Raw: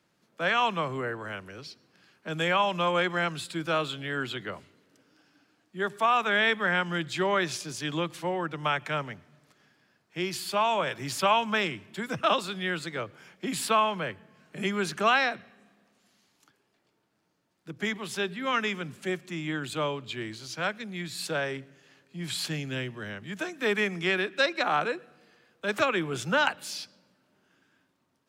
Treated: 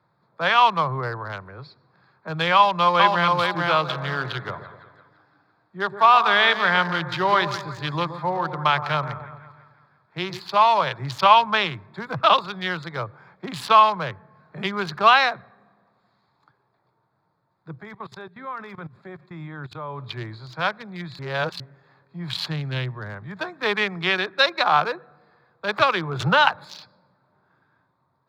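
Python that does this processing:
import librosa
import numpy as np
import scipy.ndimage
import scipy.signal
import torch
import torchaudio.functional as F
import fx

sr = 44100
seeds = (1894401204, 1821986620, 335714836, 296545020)

y = fx.echo_throw(x, sr, start_s=2.55, length_s=0.76, ms=440, feedback_pct=25, wet_db=-2.5)
y = fx.echo_split(y, sr, split_hz=1100.0, low_ms=123, high_ms=169, feedback_pct=52, wet_db=-10.0, at=(3.88, 10.39), fade=0.02)
y = fx.level_steps(y, sr, step_db=19, at=(17.76, 19.99))
y = fx.band_squash(y, sr, depth_pct=70, at=(26.2, 26.65))
y = fx.edit(y, sr, fx.reverse_span(start_s=21.19, length_s=0.41), tone=tone)
y = fx.wiener(y, sr, points=15)
y = fx.graphic_eq_10(y, sr, hz=(125, 250, 1000, 4000, 8000), db=(10, -8, 10, 11, -9))
y = F.gain(torch.from_numpy(y), 2.0).numpy()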